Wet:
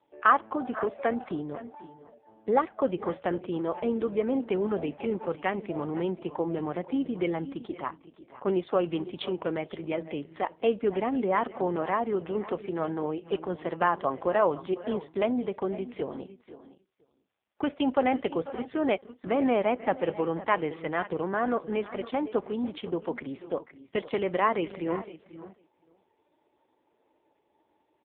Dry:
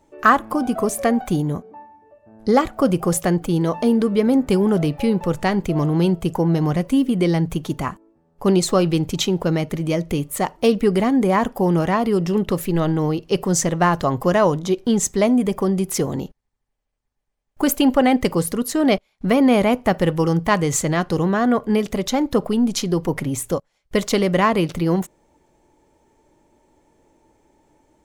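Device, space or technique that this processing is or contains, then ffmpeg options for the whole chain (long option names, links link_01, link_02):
satellite phone: -filter_complex "[0:a]highpass=340,lowpass=3200,lowpass=8100,highshelf=frequency=4900:gain=6,asplit=2[link_01][link_02];[link_02]adelay=489.8,volume=-18dB,highshelf=frequency=4000:gain=-11[link_03];[link_01][link_03]amix=inputs=2:normalize=0,aecho=1:1:515:0.158,volume=-6dB" -ar 8000 -c:a libopencore_amrnb -b:a 5150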